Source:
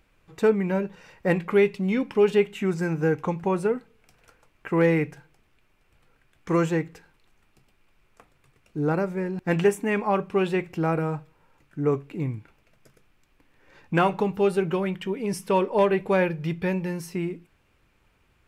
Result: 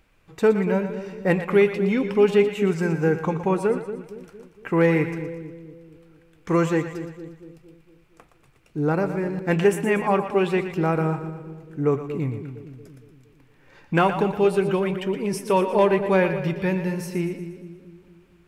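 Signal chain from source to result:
echo with a time of its own for lows and highs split 490 Hz, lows 231 ms, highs 118 ms, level −10 dB
level +2 dB

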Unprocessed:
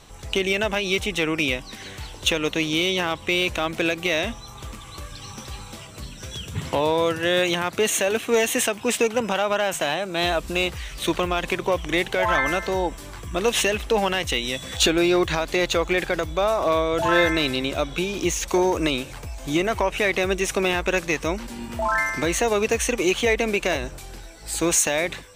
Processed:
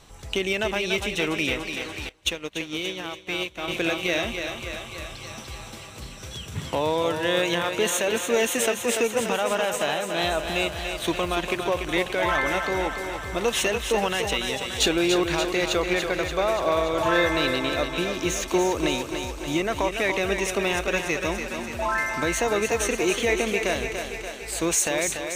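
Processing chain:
feedback echo with a high-pass in the loop 289 ms, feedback 67%, high-pass 210 Hz, level −6.5 dB
0:02.09–0:03.68: expander for the loud parts 2.5 to 1, over −33 dBFS
level −3 dB

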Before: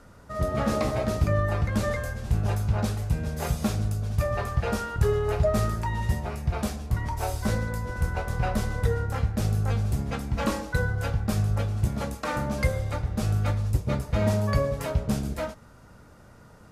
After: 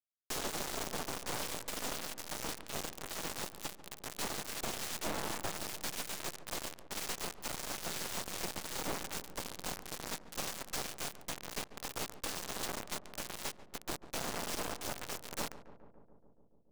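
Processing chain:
Chebyshev high-pass filter 460 Hz, order 3
downward compressor 12 to 1, threshold −42 dBFS, peak gain reduction 21 dB
cochlear-implant simulation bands 2
frequency shifter +32 Hz
half-wave rectification
bit reduction 7 bits
feedback echo with a low-pass in the loop 142 ms, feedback 80%, low-pass 1,300 Hz, level −13 dB
level +7.5 dB

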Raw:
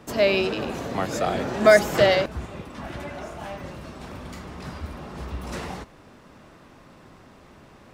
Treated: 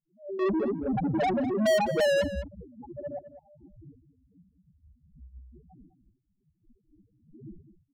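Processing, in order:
wind on the microphone 430 Hz −33 dBFS
notch filter 670 Hz, Q 20
downward expander −27 dBFS
spectral peaks only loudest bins 1
0:00.39–0:03.19: mid-hump overdrive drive 35 dB, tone 7,000 Hz, clips at −13 dBFS
slap from a distant wall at 35 metres, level −13 dB
level that may rise only so fast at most 200 dB per second
level −5 dB

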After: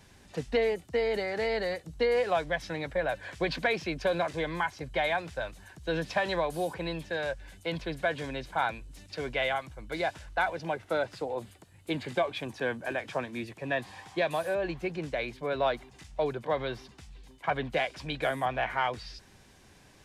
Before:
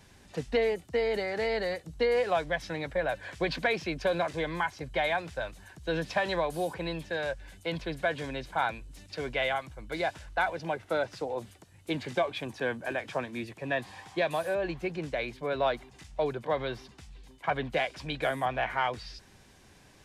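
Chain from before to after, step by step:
0:11.03–0:12.25: parametric band 5,800 Hz −6 dB 0.25 octaves

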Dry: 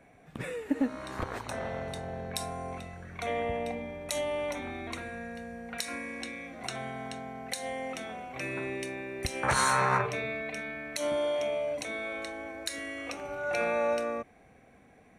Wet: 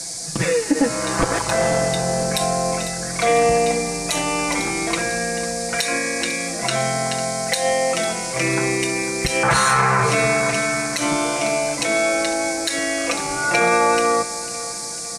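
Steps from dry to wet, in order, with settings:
high-shelf EQ 11,000 Hz −6 dB
comb filter 6 ms, depth 92%
noise in a band 4,400–9,700 Hz −44 dBFS
on a send: repeating echo 500 ms, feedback 49%, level −16 dB
on the sum: boost into a limiter +19.5 dB
level −6 dB

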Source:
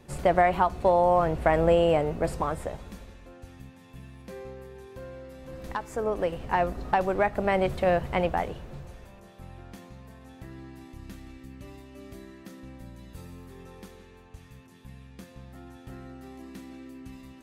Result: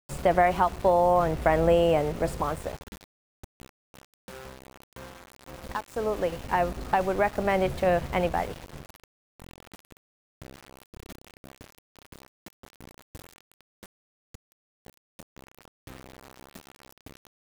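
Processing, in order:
centre clipping without the shift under −37.5 dBFS

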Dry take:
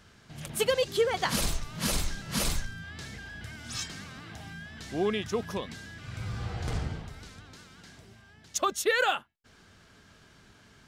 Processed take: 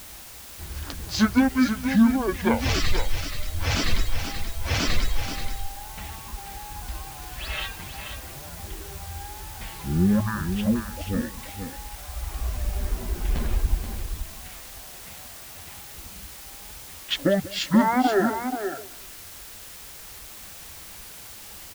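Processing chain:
parametric band 240 Hz −12 dB 0.25 octaves
mains-hum notches 50/100/150/200 Hz
repeating echo 95 ms, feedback 30%, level −10.5 dB
reverb reduction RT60 1.6 s
low-shelf EQ 460 Hz +8.5 dB
wrong playback speed 15 ips tape played at 7.5 ips
in parallel at −7 dB: bit-depth reduction 6 bits, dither triangular
on the sum: single-tap delay 481 ms −8 dB

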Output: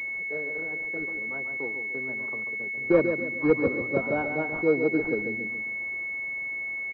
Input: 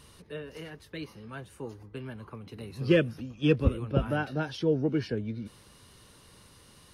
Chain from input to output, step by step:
0:02.44–0:02.94: output level in coarse steps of 21 dB
high-pass filter 310 Hz 12 dB per octave
repeating echo 139 ms, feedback 40%, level −7.5 dB
buffer that repeats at 0:06.17, samples 2,048, times 6
switching amplifier with a slow clock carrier 2,200 Hz
level +5 dB

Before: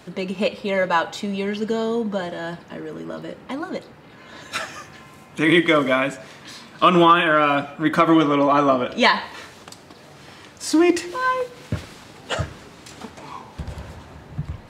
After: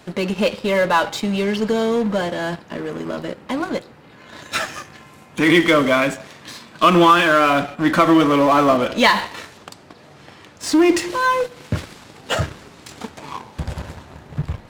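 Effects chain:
0:09.57–0:10.82: high-shelf EQ 5,200 Hz −6.5 dB
in parallel at −11 dB: fuzz pedal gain 28 dB, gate −36 dBFS

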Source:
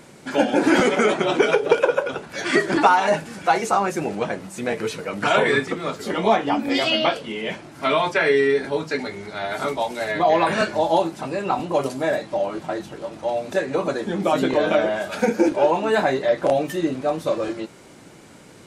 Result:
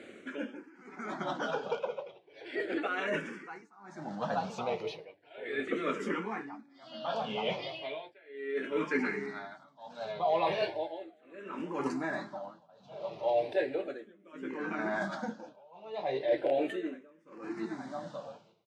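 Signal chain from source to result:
band-pass filter 150–4,300 Hz
repeating echo 875 ms, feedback 33%, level −14 dB
reversed playback
downward compressor 6 to 1, threshold −24 dBFS, peak gain reduction 13.5 dB
reversed playback
amplitude tremolo 0.67 Hz, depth 97%
frequency shifter mixed with the dry sound −0.36 Hz

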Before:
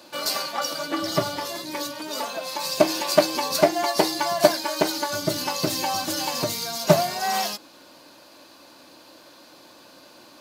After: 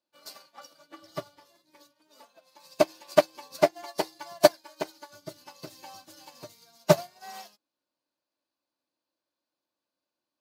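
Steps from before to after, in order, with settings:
dynamic equaliser 220 Hz, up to −5 dB, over −37 dBFS, Q 1.6
expander for the loud parts 2.5 to 1, over −38 dBFS

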